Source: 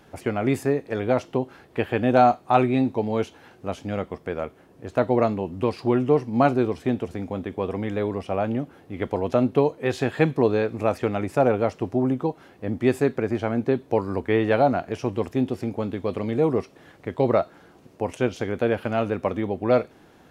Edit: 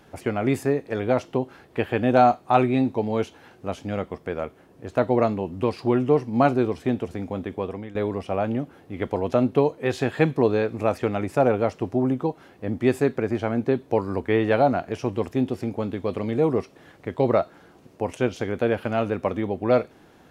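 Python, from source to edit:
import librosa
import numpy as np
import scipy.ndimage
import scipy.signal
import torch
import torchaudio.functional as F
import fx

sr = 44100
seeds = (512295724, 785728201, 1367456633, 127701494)

y = fx.edit(x, sr, fx.fade_out_to(start_s=7.54, length_s=0.41, floor_db=-14.5), tone=tone)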